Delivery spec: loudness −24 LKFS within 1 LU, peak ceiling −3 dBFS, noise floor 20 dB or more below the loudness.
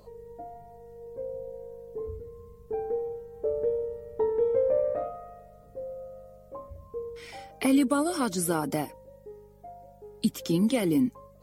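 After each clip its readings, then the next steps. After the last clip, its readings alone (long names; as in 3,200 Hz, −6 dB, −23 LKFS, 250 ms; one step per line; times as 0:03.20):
mains hum 50 Hz; hum harmonics up to 200 Hz; level of the hum −56 dBFS; integrated loudness −29.0 LKFS; sample peak −12.5 dBFS; target loudness −24.0 LKFS
→ hum removal 50 Hz, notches 4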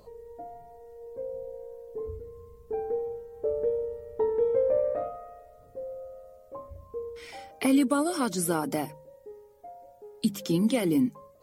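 mains hum none found; integrated loudness −29.0 LKFS; sample peak −12.5 dBFS; target loudness −24.0 LKFS
→ level +5 dB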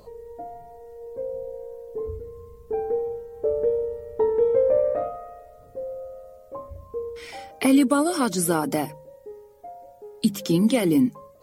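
integrated loudness −24.0 LKFS; sample peak −7.5 dBFS; background noise floor −50 dBFS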